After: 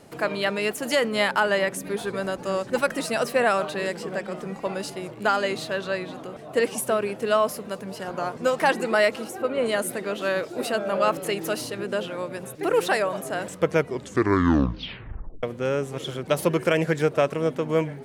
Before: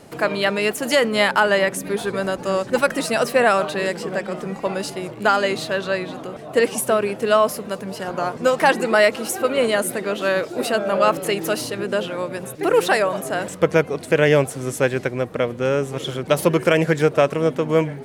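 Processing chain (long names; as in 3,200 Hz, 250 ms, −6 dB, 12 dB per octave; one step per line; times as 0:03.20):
0:09.24–0:09.66: high-shelf EQ 2,300 Hz −10 dB
0:13.76: tape stop 1.67 s
level −5 dB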